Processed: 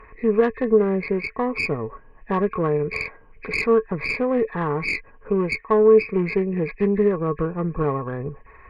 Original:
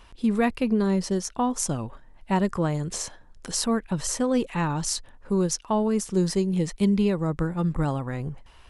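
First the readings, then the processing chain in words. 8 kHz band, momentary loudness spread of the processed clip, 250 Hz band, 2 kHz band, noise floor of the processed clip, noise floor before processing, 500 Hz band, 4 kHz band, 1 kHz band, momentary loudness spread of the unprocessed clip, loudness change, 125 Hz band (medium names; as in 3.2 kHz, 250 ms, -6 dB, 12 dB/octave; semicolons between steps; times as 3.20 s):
under -20 dB, 11 LU, -0.5 dB, +10.0 dB, -49 dBFS, -51 dBFS, +9.0 dB, -6.0 dB, +2.5 dB, 8 LU, +3.5 dB, -1.0 dB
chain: knee-point frequency compression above 1.6 kHz 4:1; in parallel at 0 dB: compression, threshold -37 dBFS, peak gain reduction 18 dB; on the sum: valve stage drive 16 dB, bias 0.6; small resonant body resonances 440/1100 Hz, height 17 dB, ringing for 80 ms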